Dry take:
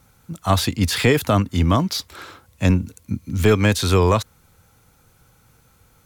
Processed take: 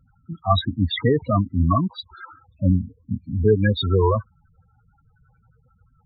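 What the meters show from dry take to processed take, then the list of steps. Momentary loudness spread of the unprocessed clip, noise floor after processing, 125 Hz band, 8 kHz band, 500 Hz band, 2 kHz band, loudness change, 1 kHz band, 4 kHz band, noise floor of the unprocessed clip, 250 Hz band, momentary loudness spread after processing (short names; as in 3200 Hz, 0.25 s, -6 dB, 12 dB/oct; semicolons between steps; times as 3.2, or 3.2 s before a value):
13 LU, -62 dBFS, -1.5 dB, under -40 dB, -1.5 dB, -7.5 dB, -2.0 dB, -1.5 dB, -4.0 dB, -57 dBFS, -2.5 dB, 12 LU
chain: LFO low-pass sine 5.6 Hz 900–4100 Hz; loudest bins only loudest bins 8; gain -1 dB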